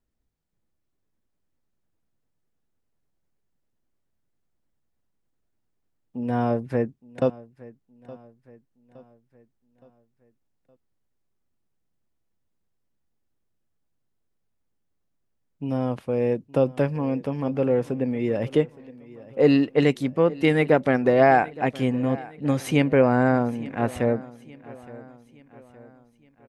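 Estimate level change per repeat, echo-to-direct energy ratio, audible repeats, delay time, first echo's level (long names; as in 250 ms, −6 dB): −6.5 dB, −19.0 dB, 3, 867 ms, −20.0 dB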